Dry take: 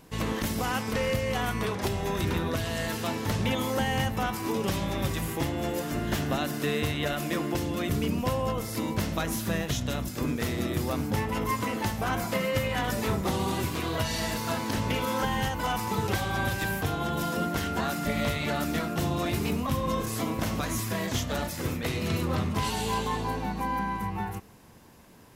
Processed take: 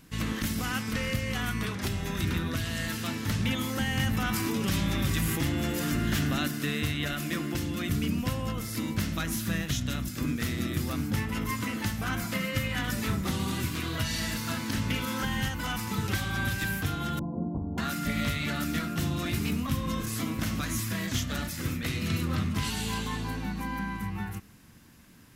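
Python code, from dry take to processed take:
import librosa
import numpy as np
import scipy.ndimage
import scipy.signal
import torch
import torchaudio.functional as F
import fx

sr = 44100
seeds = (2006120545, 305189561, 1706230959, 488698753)

y = fx.env_flatten(x, sr, amount_pct=70, at=(3.97, 6.48))
y = fx.steep_lowpass(y, sr, hz=1000.0, slope=72, at=(17.19, 17.78))
y = fx.band_shelf(y, sr, hz=620.0, db=-9.5, octaves=1.7)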